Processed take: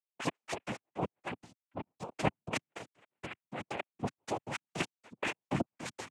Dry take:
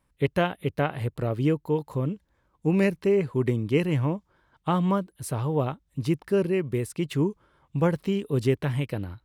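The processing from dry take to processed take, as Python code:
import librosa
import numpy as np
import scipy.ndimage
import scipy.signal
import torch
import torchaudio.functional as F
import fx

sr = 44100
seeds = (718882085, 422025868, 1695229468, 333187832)

p1 = fx.spec_delay(x, sr, highs='late', ms=359)
p2 = fx.low_shelf_res(p1, sr, hz=480.0, db=-10.0, q=1.5)
p3 = fx.level_steps(p2, sr, step_db=16)
p4 = p3 + fx.echo_feedback(p3, sr, ms=135, feedback_pct=36, wet_db=-19.0, dry=0)
p5 = fx.stretch_vocoder_free(p4, sr, factor=0.66)
p6 = fx.step_gate(p5, sr, bpm=158, pattern='..x..x.x', floor_db=-60.0, edge_ms=4.5)
p7 = fx.spec_erase(p6, sr, start_s=0.73, length_s=1.37, low_hz=1500.0, high_hz=3300.0)
p8 = fx.noise_vocoder(p7, sr, seeds[0], bands=4)
p9 = fx.dynamic_eq(p8, sr, hz=2500.0, q=1.7, threshold_db=-56.0, ratio=4.0, max_db=6)
p10 = fx.over_compress(p9, sr, threshold_db=-42.0, ratio=-0.5)
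p11 = fx.band_widen(p10, sr, depth_pct=40)
y = F.gain(torch.from_numpy(p11), 10.0).numpy()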